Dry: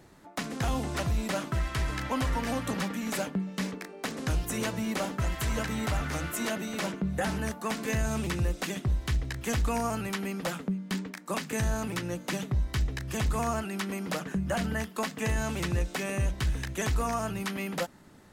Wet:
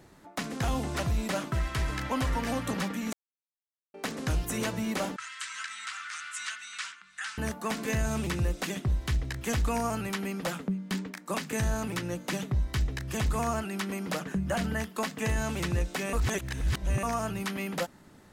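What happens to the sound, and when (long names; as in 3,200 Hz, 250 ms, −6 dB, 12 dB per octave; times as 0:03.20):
0:03.13–0:03.94: silence
0:05.16–0:07.38: elliptic band-pass filter 1,300–8,700 Hz
0:16.13–0:17.03: reverse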